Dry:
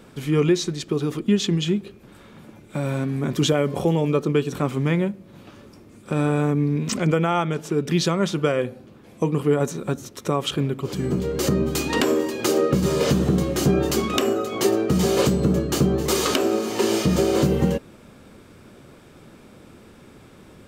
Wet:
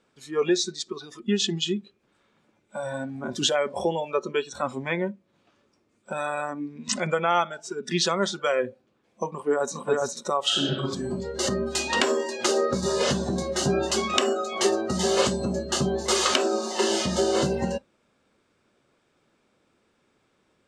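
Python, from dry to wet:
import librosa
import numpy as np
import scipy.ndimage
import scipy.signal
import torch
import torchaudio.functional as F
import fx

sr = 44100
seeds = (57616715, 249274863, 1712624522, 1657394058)

y = fx.echo_throw(x, sr, start_s=9.3, length_s=0.51, ms=410, feedback_pct=15, wet_db=-1.0)
y = fx.reverb_throw(y, sr, start_s=10.42, length_s=0.41, rt60_s=1.5, drr_db=-3.5)
y = fx.noise_reduce_blind(y, sr, reduce_db=18)
y = scipy.signal.sosfilt(scipy.signal.butter(4, 8500.0, 'lowpass', fs=sr, output='sos'), y)
y = fx.low_shelf(y, sr, hz=290.0, db=-12.0)
y = y * librosa.db_to_amplitude(2.0)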